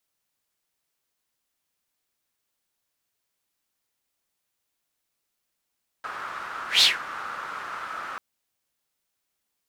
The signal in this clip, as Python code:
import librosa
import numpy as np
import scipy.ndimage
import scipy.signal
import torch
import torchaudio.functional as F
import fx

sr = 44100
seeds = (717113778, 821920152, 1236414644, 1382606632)

y = fx.whoosh(sr, seeds[0], length_s=2.14, peak_s=0.78, rise_s=0.15, fall_s=0.18, ends_hz=1300.0, peak_hz=4000.0, q=4.4, swell_db=19)